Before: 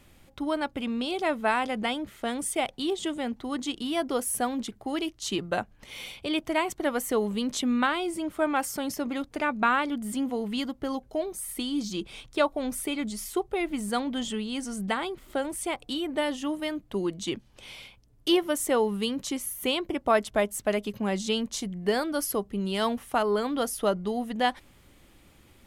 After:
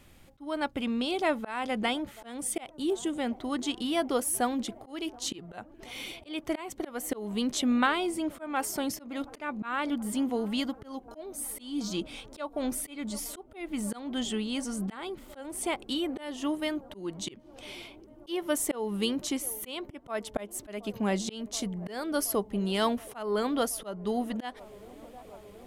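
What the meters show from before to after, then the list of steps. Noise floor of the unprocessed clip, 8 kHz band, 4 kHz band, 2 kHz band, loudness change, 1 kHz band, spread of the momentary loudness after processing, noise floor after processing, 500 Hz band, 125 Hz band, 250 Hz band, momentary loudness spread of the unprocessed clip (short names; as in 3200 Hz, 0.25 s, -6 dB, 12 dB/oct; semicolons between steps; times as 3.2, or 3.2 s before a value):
-58 dBFS, -0.5 dB, -3.0 dB, -5.0 dB, -3.0 dB, -5.0 dB, 13 LU, -53 dBFS, -5.0 dB, -1.5 dB, -2.0 dB, 7 LU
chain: spectral gain 2.69–3.13, 560–5700 Hz -7 dB; band-limited delay 0.726 s, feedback 82%, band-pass 480 Hz, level -23 dB; auto swell 0.275 s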